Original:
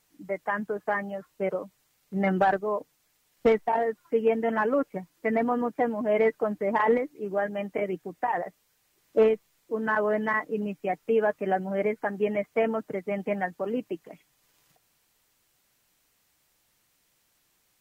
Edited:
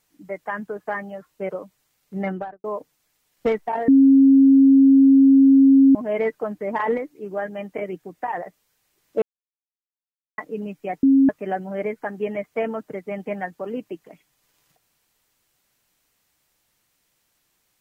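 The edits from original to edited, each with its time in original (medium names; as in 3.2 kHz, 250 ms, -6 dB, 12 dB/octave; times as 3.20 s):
2.16–2.64 s: studio fade out
3.88–5.95 s: bleep 271 Hz -9 dBFS
9.22–10.38 s: mute
11.03–11.29 s: bleep 271 Hz -11 dBFS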